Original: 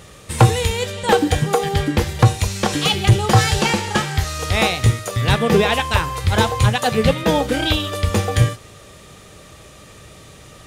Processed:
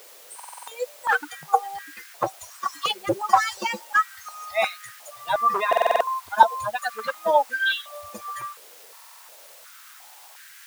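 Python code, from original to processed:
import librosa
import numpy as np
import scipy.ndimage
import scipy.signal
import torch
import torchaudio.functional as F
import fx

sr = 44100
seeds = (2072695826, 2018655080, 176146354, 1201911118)

p1 = fx.bin_expand(x, sr, power=3.0)
p2 = np.clip(p1, -10.0 ** (-14.5 / 20.0), 10.0 ** (-14.5 / 20.0))
p3 = fx.tilt_shelf(p2, sr, db=6.0, hz=1300.0)
p4 = fx.quant_dither(p3, sr, seeds[0], bits=6, dither='triangular')
p5 = p3 + (p4 * 10.0 ** (-10.0 / 20.0))
p6 = fx.buffer_glitch(p5, sr, at_s=(0.35, 5.68, 8.89), block=2048, repeats=6)
p7 = fx.filter_held_highpass(p6, sr, hz=2.8, low_hz=480.0, high_hz=1600.0)
y = p7 * 10.0 ** (-2.0 / 20.0)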